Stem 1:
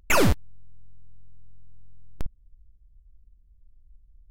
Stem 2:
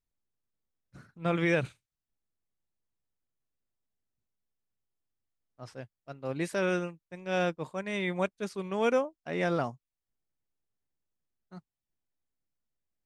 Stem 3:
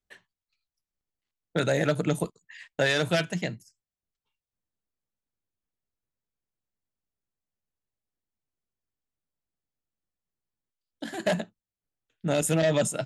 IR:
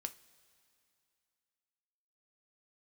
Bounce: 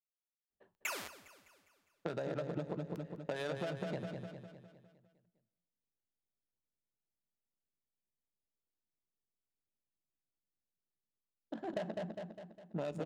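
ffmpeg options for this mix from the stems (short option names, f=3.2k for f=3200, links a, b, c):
-filter_complex "[0:a]highpass=f=1.2k:p=1,adelay=750,volume=-13.5dB,asplit=3[a][b][c];[b]volume=-5dB[d];[c]volume=-17.5dB[e];[2:a]equalizer=f=2k:w=2:g=-10.5,adynamicsmooth=sensitivity=2:basefreq=740,adelay=500,volume=-3dB,asplit=3[f][g][h];[g]volume=-10dB[i];[h]volume=-10dB[j];[a][f]amix=inputs=2:normalize=0,highpass=f=350:p=1,acompressor=threshold=-33dB:ratio=6,volume=0dB[k];[3:a]atrim=start_sample=2205[l];[d][i]amix=inputs=2:normalize=0[m];[m][l]afir=irnorm=-1:irlink=0[n];[e][j]amix=inputs=2:normalize=0,aecho=0:1:203|406|609|812|1015|1218|1421:1|0.5|0.25|0.125|0.0625|0.0312|0.0156[o];[k][n][o]amix=inputs=3:normalize=0,acompressor=threshold=-35dB:ratio=6"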